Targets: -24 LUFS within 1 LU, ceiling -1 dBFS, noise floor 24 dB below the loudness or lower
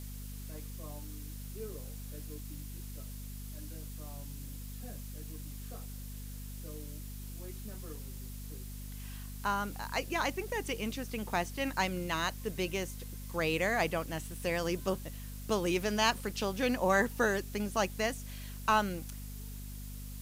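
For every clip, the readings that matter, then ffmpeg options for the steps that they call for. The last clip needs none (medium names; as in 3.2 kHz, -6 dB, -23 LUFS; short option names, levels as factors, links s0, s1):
hum 50 Hz; highest harmonic 250 Hz; hum level -41 dBFS; noise floor -43 dBFS; noise floor target -60 dBFS; loudness -36.0 LUFS; peak level -16.5 dBFS; loudness target -24.0 LUFS
-> -af "bandreject=f=50:t=h:w=6,bandreject=f=100:t=h:w=6,bandreject=f=150:t=h:w=6,bandreject=f=200:t=h:w=6,bandreject=f=250:t=h:w=6"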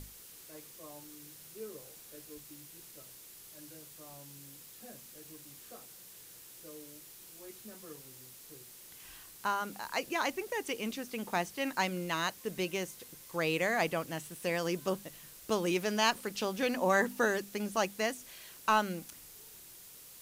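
hum not found; noise floor -53 dBFS; noise floor target -58 dBFS
-> -af "afftdn=nr=6:nf=-53"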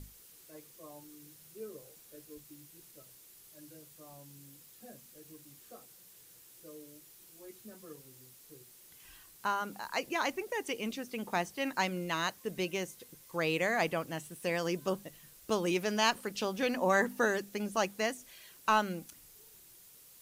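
noise floor -58 dBFS; loudness -33.5 LUFS; peak level -16.5 dBFS; loudness target -24.0 LUFS
-> -af "volume=2.99"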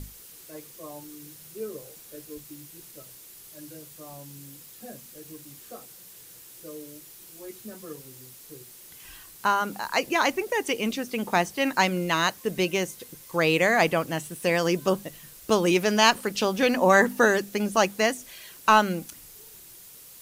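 loudness -24.0 LUFS; peak level -7.0 dBFS; noise floor -48 dBFS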